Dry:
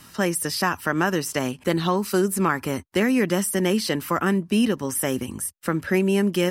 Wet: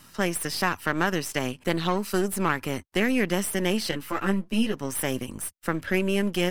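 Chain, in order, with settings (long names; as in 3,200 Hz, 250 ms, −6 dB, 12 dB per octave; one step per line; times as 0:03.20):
gain on one half-wave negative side −7 dB
dynamic equaliser 2,600 Hz, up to +4 dB, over −41 dBFS, Q 1
0:03.91–0:04.74: string-ensemble chorus
level −2 dB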